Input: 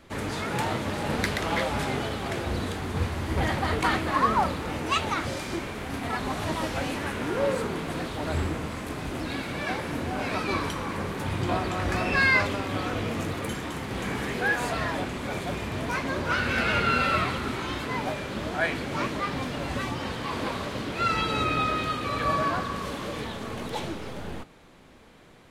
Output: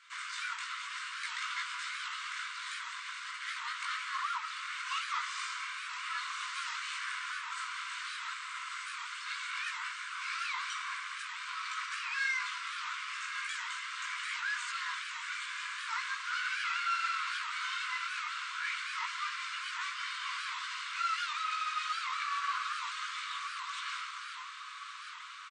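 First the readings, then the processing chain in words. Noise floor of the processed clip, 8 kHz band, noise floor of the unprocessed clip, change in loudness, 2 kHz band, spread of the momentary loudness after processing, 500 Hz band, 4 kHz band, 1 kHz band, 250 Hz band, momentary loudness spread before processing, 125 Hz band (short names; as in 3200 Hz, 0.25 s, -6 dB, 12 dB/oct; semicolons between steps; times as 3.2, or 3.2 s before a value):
-44 dBFS, -3.5 dB, -37 dBFS, -8.5 dB, -6.0 dB, 6 LU, under -40 dB, -3.5 dB, -8.0 dB, under -40 dB, 9 LU, under -40 dB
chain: comb 1.4 ms, depth 35%; limiter -20.5 dBFS, peak gain reduction 11.5 dB; soft clip -28.5 dBFS, distortion -13 dB; chorus voices 6, 0.87 Hz, delay 18 ms, depth 3.3 ms; brick-wall FIR band-pass 980–8900 Hz; diffused feedback echo 1.213 s, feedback 55%, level -7.5 dB; record warp 78 rpm, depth 160 cents; gain +2.5 dB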